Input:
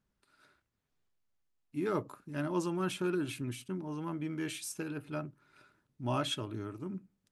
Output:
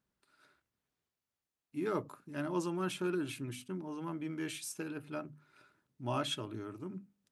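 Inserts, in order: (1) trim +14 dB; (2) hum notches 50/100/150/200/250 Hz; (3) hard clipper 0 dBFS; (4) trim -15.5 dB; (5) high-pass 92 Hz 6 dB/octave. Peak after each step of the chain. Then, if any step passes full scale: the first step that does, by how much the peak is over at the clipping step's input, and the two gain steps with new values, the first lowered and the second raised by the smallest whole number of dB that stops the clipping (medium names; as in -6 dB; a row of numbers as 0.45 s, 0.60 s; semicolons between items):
-5.5 dBFS, -5.5 dBFS, -5.5 dBFS, -21.0 dBFS, -21.0 dBFS; nothing clips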